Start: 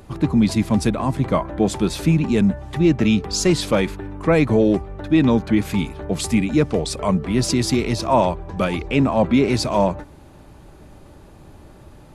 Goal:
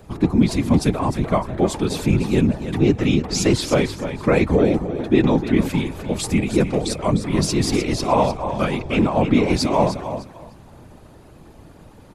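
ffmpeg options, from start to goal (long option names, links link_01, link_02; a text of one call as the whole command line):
ffmpeg -i in.wav -af "aecho=1:1:303|606|909:0.316|0.0696|0.0153,afftfilt=real='hypot(re,im)*cos(2*PI*random(0))':imag='hypot(re,im)*sin(2*PI*random(1))':win_size=512:overlap=0.75,volume=5.5dB" out.wav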